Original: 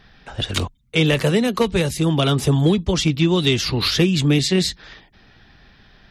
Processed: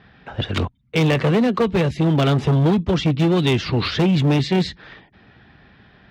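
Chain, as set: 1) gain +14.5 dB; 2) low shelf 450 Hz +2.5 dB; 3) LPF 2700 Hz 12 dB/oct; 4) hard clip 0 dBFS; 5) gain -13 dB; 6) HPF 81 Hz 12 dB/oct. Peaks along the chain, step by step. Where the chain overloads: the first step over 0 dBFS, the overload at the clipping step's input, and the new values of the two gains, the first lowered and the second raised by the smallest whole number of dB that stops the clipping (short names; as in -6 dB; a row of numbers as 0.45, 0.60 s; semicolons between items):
+8.0, +10.0, +9.5, 0.0, -13.0, -7.5 dBFS; step 1, 9.5 dB; step 1 +4.5 dB, step 5 -3 dB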